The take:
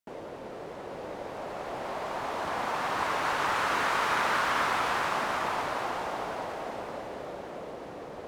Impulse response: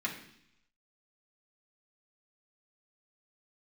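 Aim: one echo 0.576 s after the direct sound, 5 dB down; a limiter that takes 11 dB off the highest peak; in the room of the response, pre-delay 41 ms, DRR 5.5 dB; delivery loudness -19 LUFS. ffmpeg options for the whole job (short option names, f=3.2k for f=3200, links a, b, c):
-filter_complex "[0:a]alimiter=level_in=1.5dB:limit=-24dB:level=0:latency=1,volume=-1.5dB,aecho=1:1:576:0.562,asplit=2[a][b];[1:a]atrim=start_sample=2205,adelay=41[c];[b][c]afir=irnorm=-1:irlink=0,volume=-10.5dB[d];[a][d]amix=inputs=2:normalize=0,volume=14.5dB"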